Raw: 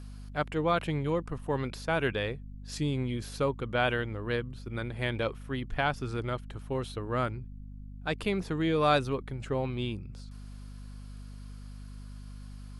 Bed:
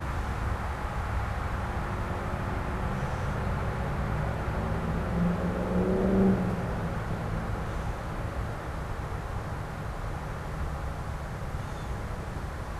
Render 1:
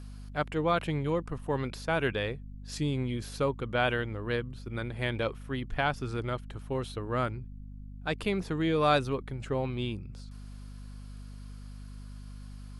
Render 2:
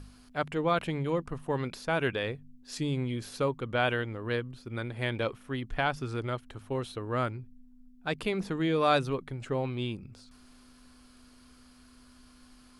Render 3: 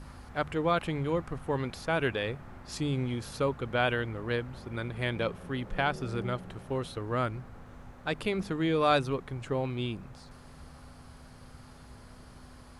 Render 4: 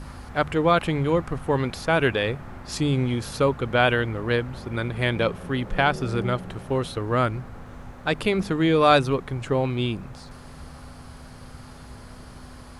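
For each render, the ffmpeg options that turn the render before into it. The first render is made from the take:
-af anull
-af "bandreject=f=50:t=h:w=4,bandreject=f=100:t=h:w=4,bandreject=f=150:t=h:w=4,bandreject=f=200:t=h:w=4"
-filter_complex "[1:a]volume=0.141[s0];[0:a][s0]amix=inputs=2:normalize=0"
-af "volume=2.51"

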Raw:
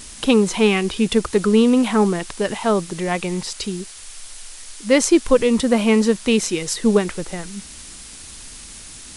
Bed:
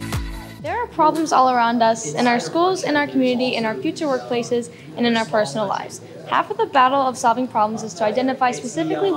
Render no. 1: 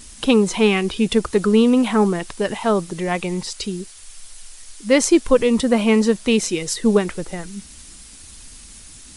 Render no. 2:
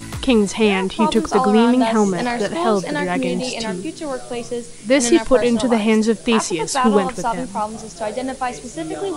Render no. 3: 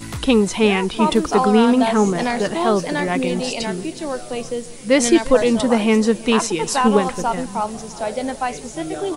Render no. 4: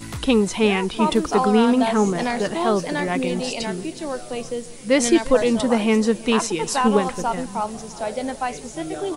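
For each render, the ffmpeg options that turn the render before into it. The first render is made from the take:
-af "afftdn=nr=6:nf=-39"
-filter_complex "[1:a]volume=0.562[s0];[0:a][s0]amix=inputs=2:normalize=0"
-af "aecho=1:1:346|692|1038|1384:0.0944|0.05|0.0265|0.0141"
-af "volume=0.75"

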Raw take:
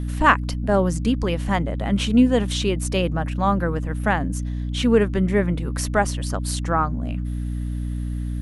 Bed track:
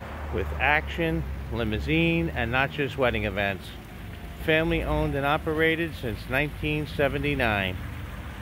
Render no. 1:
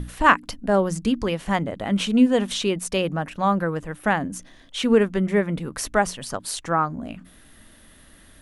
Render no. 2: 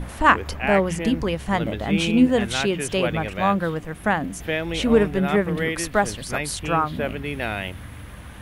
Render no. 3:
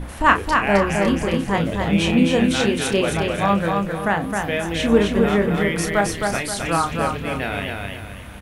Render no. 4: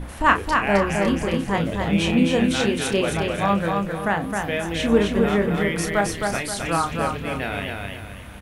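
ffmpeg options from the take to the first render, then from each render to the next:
-af "bandreject=f=60:t=h:w=6,bandreject=f=120:t=h:w=6,bandreject=f=180:t=h:w=6,bandreject=f=240:t=h:w=6,bandreject=f=300:t=h:w=6"
-filter_complex "[1:a]volume=0.708[s0];[0:a][s0]amix=inputs=2:normalize=0"
-filter_complex "[0:a]asplit=2[s0][s1];[s1]adelay=30,volume=0.447[s2];[s0][s2]amix=inputs=2:normalize=0,aecho=1:1:264|528|792|1056|1320:0.631|0.233|0.0864|0.032|0.0118"
-af "volume=0.794"

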